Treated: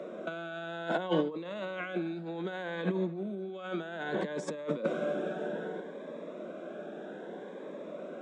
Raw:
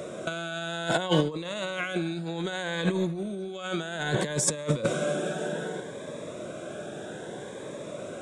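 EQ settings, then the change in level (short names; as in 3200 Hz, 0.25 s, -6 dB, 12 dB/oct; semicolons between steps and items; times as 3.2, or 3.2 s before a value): steep high-pass 180 Hz 48 dB/oct; tape spacing loss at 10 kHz 23 dB; high shelf 5400 Hz -8 dB; -2.5 dB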